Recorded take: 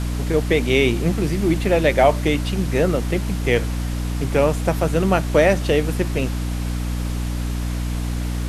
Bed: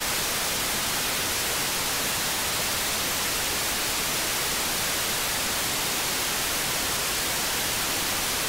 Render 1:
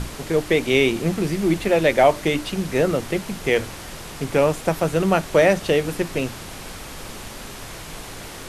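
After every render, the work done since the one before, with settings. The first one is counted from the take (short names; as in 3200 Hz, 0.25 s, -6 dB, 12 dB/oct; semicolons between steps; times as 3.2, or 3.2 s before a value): notches 60/120/180/240/300 Hz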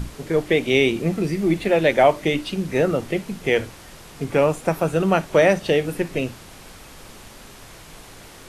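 noise print and reduce 7 dB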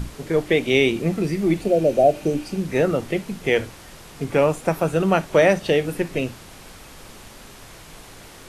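1.63–2.53 spectral repair 770–4400 Hz after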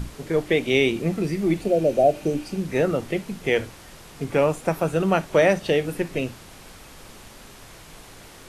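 gain -2 dB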